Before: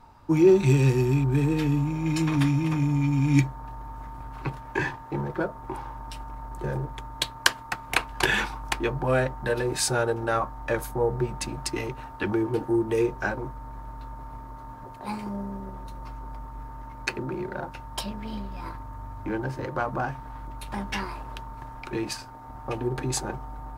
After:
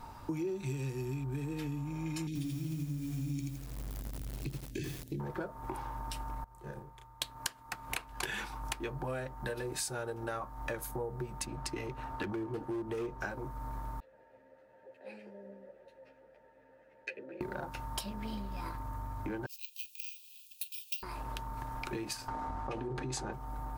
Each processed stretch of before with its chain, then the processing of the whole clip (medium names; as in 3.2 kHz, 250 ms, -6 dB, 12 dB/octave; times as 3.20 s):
2.27–5.20 s: Chebyshev band-stop 290–3700 Hz + bit-crushed delay 82 ms, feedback 35%, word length 7-bit, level -3 dB
6.44–7.22 s: band-stop 270 Hz, Q 5.1 + gate -26 dBFS, range -22 dB + doubling 34 ms -3 dB
11.45–13.21 s: low-pass 3.3 kHz 6 dB/octave + hard clipper -21 dBFS
14.00–17.41 s: vowel filter e + three-phase chorus
19.46–21.03 s: brick-wall FIR band-pass 2.4–13 kHz + careless resampling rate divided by 2×, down filtered, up zero stuff
22.28–23.33 s: distance through air 75 m + hum notches 60/120/180/240/300/360/420/480/540/600 Hz + level flattener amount 70%
whole clip: treble shelf 7.3 kHz +9.5 dB; compression 6:1, threshold -40 dBFS; trim +3.5 dB